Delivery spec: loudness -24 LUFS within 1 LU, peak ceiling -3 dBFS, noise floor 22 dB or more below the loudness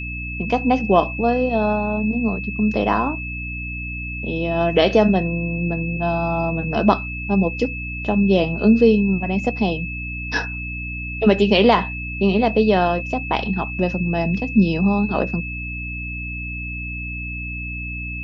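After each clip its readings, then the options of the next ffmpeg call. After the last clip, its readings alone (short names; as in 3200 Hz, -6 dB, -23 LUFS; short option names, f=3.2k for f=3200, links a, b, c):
hum 60 Hz; harmonics up to 300 Hz; hum level -29 dBFS; steady tone 2600 Hz; tone level -29 dBFS; loudness -20.5 LUFS; peak -1.0 dBFS; loudness target -24.0 LUFS
-> -af "bandreject=f=60:t=h:w=6,bandreject=f=120:t=h:w=6,bandreject=f=180:t=h:w=6,bandreject=f=240:t=h:w=6,bandreject=f=300:t=h:w=6"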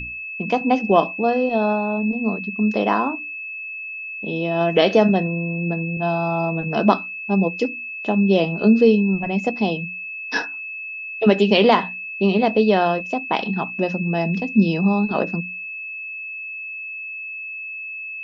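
hum none; steady tone 2600 Hz; tone level -29 dBFS
-> -af "bandreject=f=2.6k:w=30"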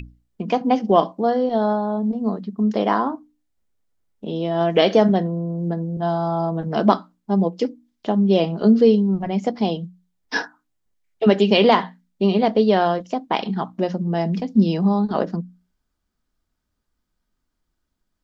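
steady tone none; loudness -20.0 LUFS; peak -2.0 dBFS; loudness target -24.0 LUFS
-> -af "volume=-4dB"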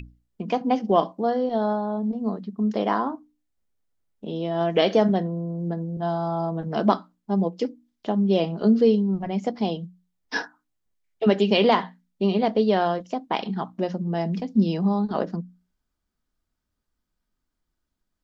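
loudness -24.0 LUFS; peak -6.0 dBFS; noise floor -80 dBFS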